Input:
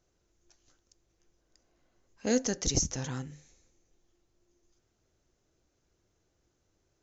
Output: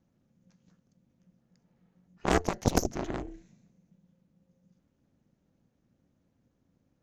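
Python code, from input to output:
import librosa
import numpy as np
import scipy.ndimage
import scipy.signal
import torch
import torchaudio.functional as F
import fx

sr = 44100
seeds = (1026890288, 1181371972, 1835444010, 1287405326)

y = fx.bass_treble(x, sr, bass_db=8, treble_db=-10)
y = y * np.sin(2.0 * np.pi * 180.0 * np.arange(len(y)) / sr)
y = fx.cheby_harmonics(y, sr, harmonics=(5, 6, 7), levels_db=(-13, -13, -7), full_scale_db=-12.5)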